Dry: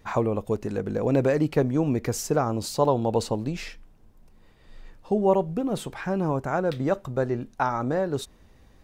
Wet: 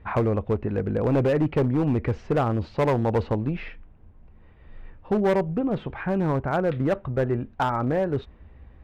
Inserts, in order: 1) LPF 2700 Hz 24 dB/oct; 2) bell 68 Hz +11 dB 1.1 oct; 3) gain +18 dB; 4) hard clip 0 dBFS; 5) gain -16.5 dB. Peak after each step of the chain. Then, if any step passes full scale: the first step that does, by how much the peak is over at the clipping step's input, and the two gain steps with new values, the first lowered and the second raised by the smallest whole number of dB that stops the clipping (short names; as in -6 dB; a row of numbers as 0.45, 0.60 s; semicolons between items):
-8.5, -8.5, +9.5, 0.0, -16.5 dBFS; step 3, 9.5 dB; step 3 +8 dB, step 5 -6.5 dB